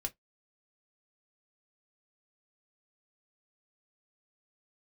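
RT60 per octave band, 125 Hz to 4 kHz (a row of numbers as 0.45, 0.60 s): 0.15, 0.15, 0.15, 0.10, 0.10, 0.10 s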